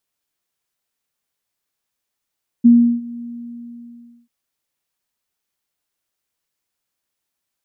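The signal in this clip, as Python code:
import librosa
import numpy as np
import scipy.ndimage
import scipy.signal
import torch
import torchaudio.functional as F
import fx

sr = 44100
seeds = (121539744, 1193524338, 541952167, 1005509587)

y = fx.adsr_tone(sr, wave='sine', hz=237.0, attack_ms=18.0, decay_ms=349.0, sustain_db=-22.5, held_s=0.58, release_ms=1060.0, level_db=-4.5)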